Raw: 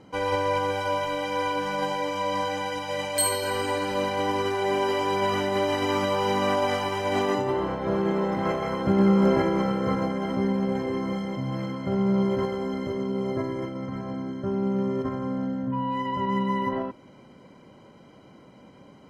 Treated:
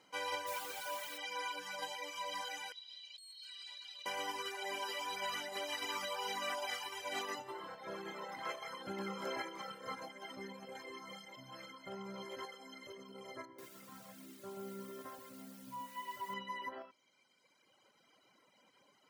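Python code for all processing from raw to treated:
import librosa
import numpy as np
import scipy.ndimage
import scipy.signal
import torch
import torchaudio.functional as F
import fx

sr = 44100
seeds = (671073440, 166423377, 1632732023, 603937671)

y = fx.high_shelf(x, sr, hz=3300.0, db=-6.5, at=(0.46, 1.17), fade=0.02)
y = fx.dmg_noise_colour(y, sr, seeds[0], colour='pink', level_db=-40.0, at=(0.46, 1.17), fade=0.02)
y = fx.chain(y, sr, fx.bandpass_q(hz=3800.0, q=4.3),
    fx.over_compress(threshold_db=-45.0, ratio=-1.0), at=(2.72, 4.06))
y = fx.chain(y, sr, fx.lowpass(hz=1500.0, slope=6),
    fx.echo_crushed(ms=133, feedback_pct=55, bits=8, wet_db=-4), at=(13.45, 16.34))
y = np.diff(y, prepend=0.0)
y = fx.dereverb_blind(y, sr, rt60_s=2.0)
y = fx.high_shelf(y, sr, hz=4400.0, db=-11.0)
y = y * 10.0 ** (6.5 / 20.0)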